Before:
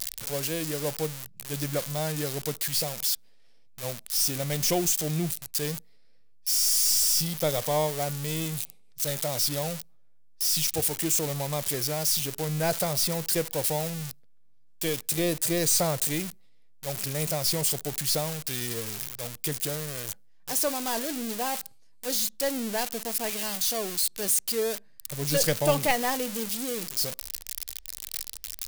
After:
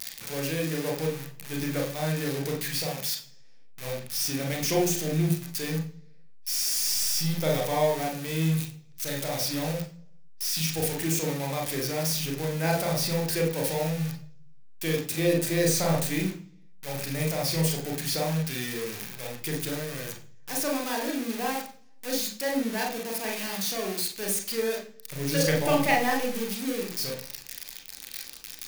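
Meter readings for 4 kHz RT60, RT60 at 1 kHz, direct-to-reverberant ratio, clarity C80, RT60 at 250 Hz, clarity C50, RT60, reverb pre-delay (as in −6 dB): 0.55 s, 0.40 s, 0.0 dB, 12.5 dB, 0.70 s, 7.5 dB, 0.45 s, 31 ms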